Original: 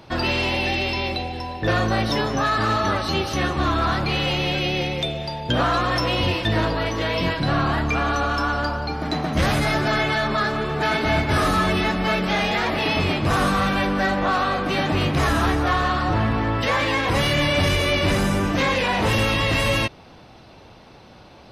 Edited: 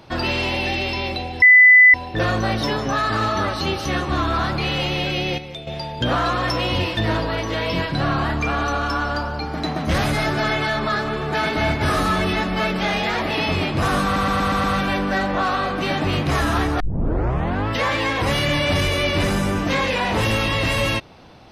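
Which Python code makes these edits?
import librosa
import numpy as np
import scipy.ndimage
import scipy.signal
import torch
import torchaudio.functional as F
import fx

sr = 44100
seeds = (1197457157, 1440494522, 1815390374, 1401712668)

y = fx.edit(x, sr, fx.insert_tone(at_s=1.42, length_s=0.52, hz=2000.0, db=-6.0),
    fx.clip_gain(start_s=4.86, length_s=0.29, db=-9.0),
    fx.stutter(start_s=13.52, slice_s=0.12, count=6),
    fx.tape_start(start_s=15.68, length_s=0.88), tone=tone)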